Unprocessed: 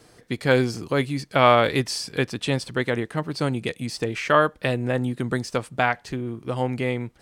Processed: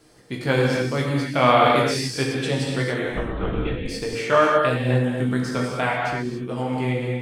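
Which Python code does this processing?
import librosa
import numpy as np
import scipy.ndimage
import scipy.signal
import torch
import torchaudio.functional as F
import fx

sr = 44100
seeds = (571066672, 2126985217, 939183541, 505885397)

y = fx.lpc_vocoder(x, sr, seeds[0], excitation='whisper', order=10, at=(3.05, 3.86))
y = fx.chorus_voices(y, sr, voices=6, hz=0.37, base_ms=19, depth_ms=3.7, mix_pct=40)
y = fx.rev_gated(y, sr, seeds[1], gate_ms=310, shape='flat', drr_db=-1.5)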